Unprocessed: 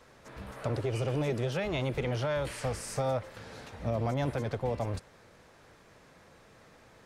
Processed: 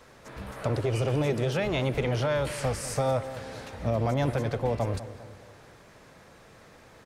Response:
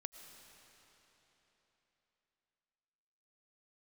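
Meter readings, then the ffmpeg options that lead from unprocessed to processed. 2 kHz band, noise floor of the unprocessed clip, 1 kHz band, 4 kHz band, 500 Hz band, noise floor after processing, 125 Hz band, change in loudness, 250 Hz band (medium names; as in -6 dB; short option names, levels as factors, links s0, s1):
+4.5 dB, -58 dBFS, +4.5 dB, +4.5 dB, +4.5 dB, -54 dBFS, +4.5 dB, +4.0 dB, +4.5 dB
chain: -filter_complex "[0:a]asplit=2[s0][s1];[s1]adelay=200,lowpass=f=2000:p=1,volume=0.2,asplit=2[s2][s3];[s3]adelay=200,lowpass=f=2000:p=1,volume=0.49,asplit=2[s4][s5];[s5]adelay=200,lowpass=f=2000:p=1,volume=0.49,asplit=2[s6][s7];[s7]adelay=200,lowpass=f=2000:p=1,volume=0.49,asplit=2[s8][s9];[s9]adelay=200,lowpass=f=2000:p=1,volume=0.49[s10];[s0][s2][s4][s6][s8][s10]amix=inputs=6:normalize=0,asplit=2[s11][s12];[1:a]atrim=start_sample=2205,highshelf=f=8100:g=10.5[s13];[s12][s13]afir=irnorm=-1:irlink=0,volume=0.355[s14];[s11][s14]amix=inputs=2:normalize=0,volume=1.33"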